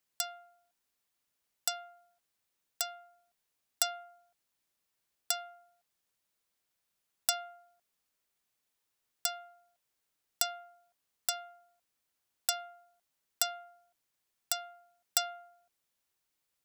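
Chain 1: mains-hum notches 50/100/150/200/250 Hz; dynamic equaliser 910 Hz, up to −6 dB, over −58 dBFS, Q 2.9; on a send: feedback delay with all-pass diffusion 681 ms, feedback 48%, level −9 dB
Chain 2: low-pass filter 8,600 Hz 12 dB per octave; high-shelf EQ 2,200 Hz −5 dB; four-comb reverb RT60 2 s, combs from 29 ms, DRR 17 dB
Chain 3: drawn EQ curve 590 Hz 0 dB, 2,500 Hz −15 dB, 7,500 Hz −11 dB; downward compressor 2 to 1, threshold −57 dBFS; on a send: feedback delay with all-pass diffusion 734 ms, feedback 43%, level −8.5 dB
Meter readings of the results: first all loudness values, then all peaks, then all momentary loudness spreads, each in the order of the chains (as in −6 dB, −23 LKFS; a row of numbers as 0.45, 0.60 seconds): −38.0, −40.5, −58.0 LKFS; −9.0, −18.5, −30.0 dBFS; 19, 19, 13 LU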